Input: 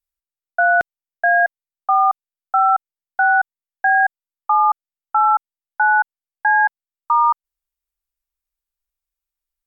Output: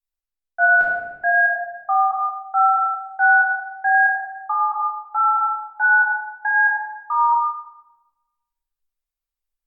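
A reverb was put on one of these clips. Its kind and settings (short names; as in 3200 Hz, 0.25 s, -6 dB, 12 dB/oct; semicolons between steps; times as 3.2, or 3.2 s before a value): shoebox room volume 580 m³, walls mixed, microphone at 3.8 m; gain -11 dB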